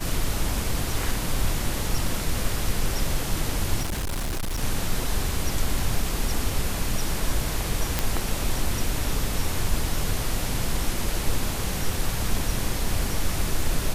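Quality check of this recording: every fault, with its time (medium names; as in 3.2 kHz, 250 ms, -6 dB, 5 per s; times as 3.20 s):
3.81–4.63 s: clipped -24 dBFS
7.99 s: pop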